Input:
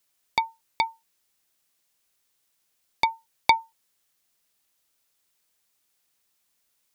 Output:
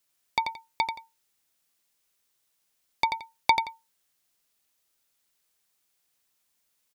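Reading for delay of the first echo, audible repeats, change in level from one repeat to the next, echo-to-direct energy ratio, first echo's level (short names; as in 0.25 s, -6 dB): 87 ms, 2, -12.5 dB, -6.5 dB, -6.5 dB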